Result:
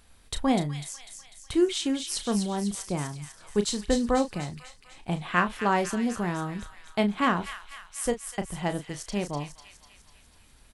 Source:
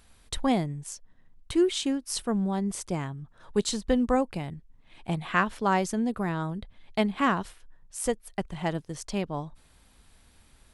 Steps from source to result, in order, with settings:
double-tracking delay 34 ms −10 dB
on a send: delay with a high-pass on its return 248 ms, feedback 55%, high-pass 2,100 Hz, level −5.5 dB

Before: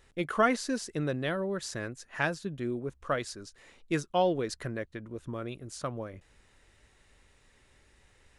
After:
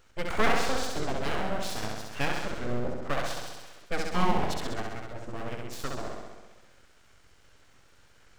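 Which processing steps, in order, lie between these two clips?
flutter between parallel walls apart 11.3 metres, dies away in 1.3 s
full-wave rectification
formants moved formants −4 semitones
level +2.5 dB

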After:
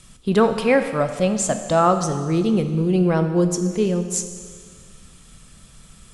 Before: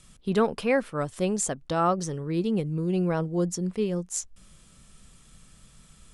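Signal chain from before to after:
0:01.00–0:01.83: thirty-one-band graphic EQ 400 Hz −10 dB, 630 Hz +8 dB, 10,000 Hz −9 dB
four-comb reverb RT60 1.8 s, combs from 25 ms, DRR 8 dB
level +6.5 dB
Opus 64 kbit/s 48,000 Hz

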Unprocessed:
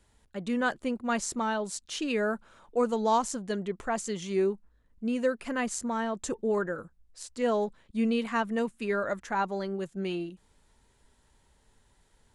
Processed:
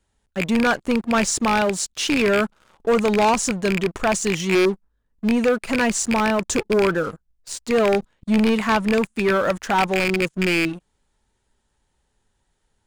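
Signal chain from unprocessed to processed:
loose part that buzzes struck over −38 dBFS, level −19 dBFS
leveller curve on the samples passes 3
wrong playback speed 25 fps video run at 24 fps
level +1 dB

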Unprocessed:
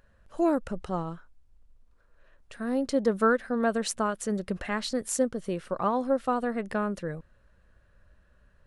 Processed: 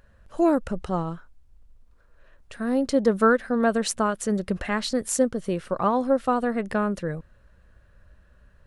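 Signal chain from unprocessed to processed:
parametric band 64 Hz +3 dB 2.6 octaves
level +4 dB

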